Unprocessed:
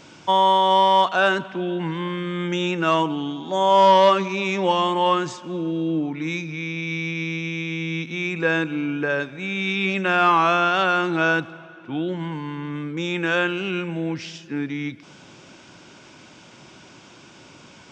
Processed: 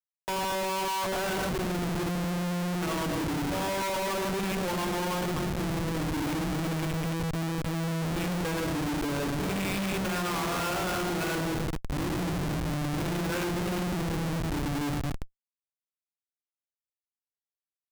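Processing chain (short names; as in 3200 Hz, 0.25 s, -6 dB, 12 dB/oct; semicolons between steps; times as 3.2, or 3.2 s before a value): one diode to ground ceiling -20 dBFS; speakerphone echo 0.2 s, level -23 dB; on a send at -5 dB: reverb RT60 1.2 s, pre-delay 80 ms; on the sum: Schmitt trigger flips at -25.5 dBFS; gain -8 dB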